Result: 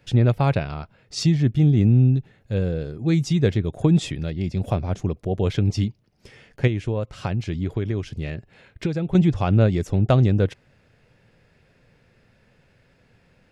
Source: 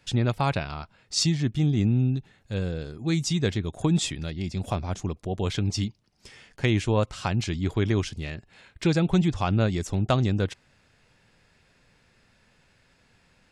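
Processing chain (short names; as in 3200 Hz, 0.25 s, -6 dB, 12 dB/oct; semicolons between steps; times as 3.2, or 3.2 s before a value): graphic EQ 125/500/1000/4000/8000 Hz +5/+5/-4/-4/-9 dB; 6.67–9.15 compressor 6:1, threshold -24 dBFS, peak gain reduction 9.5 dB; gain +2.5 dB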